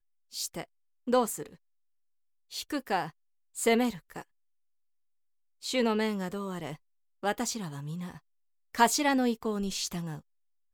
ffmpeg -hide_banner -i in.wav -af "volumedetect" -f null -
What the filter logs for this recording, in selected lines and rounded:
mean_volume: -32.9 dB
max_volume: -8.1 dB